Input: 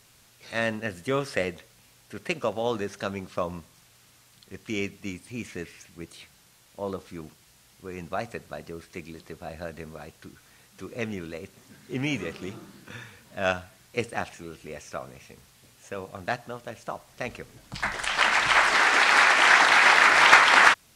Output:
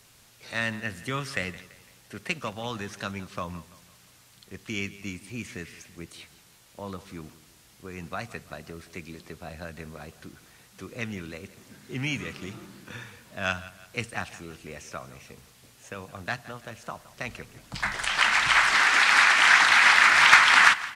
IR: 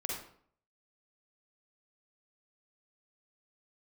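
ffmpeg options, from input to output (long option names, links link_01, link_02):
-filter_complex "[0:a]acrossover=split=240|920[link_01][link_02][link_03];[link_02]acompressor=threshold=-44dB:ratio=6[link_04];[link_01][link_04][link_03]amix=inputs=3:normalize=0,aecho=1:1:168|336|504|672:0.133|0.0587|0.0258|0.0114,volume=1dB"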